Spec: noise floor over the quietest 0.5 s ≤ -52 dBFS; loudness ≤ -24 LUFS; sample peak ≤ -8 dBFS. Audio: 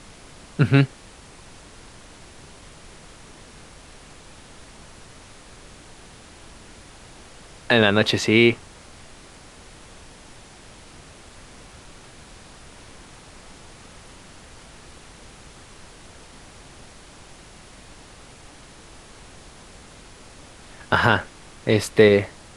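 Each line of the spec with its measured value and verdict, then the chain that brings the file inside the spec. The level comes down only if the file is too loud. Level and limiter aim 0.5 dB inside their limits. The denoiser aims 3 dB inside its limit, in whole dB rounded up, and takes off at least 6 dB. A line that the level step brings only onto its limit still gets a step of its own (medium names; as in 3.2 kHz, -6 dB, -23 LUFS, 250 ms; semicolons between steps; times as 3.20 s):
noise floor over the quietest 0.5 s -45 dBFS: fail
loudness -19.0 LUFS: fail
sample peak -1.5 dBFS: fail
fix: noise reduction 6 dB, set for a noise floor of -45 dBFS; trim -5.5 dB; peak limiter -8.5 dBFS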